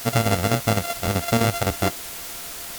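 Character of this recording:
a buzz of ramps at a fixed pitch in blocks of 64 samples
chopped level 7.8 Hz, depth 60%, duty 70%
a quantiser's noise floor 6 bits, dither triangular
WMA

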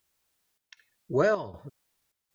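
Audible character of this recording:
a quantiser's noise floor 12 bits, dither triangular
chopped level 1.3 Hz, depth 65%, duty 75%

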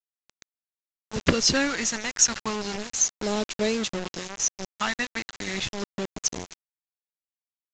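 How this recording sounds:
phaser sweep stages 2, 0.35 Hz, lowest notch 450–1,200 Hz
a quantiser's noise floor 6 bits, dither none
mu-law

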